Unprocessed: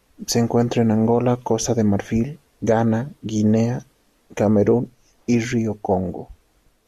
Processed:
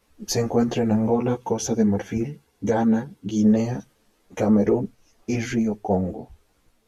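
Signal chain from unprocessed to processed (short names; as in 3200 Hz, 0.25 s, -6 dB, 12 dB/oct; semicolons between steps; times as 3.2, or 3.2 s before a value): 1.15–3.43 notch comb 610 Hz; ensemble effect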